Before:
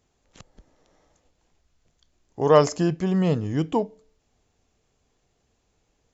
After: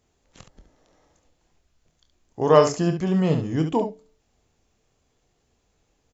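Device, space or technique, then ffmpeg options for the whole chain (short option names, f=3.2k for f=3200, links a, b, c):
slapback doubling: -filter_complex "[0:a]asplit=3[a][b][c];[b]adelay=25,volume=-9dB[d];[c]adelay=70,volume=-8dB[e];[a][d][e]amix=inputs=3:normalize=0"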